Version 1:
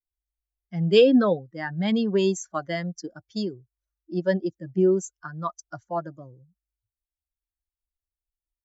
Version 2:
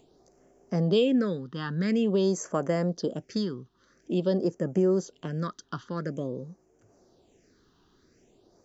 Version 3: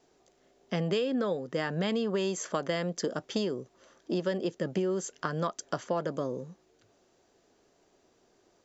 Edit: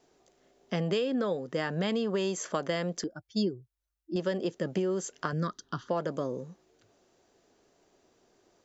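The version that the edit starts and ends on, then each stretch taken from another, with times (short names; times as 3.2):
3
3.04–4.16 from 1
5.33–5.89 from 2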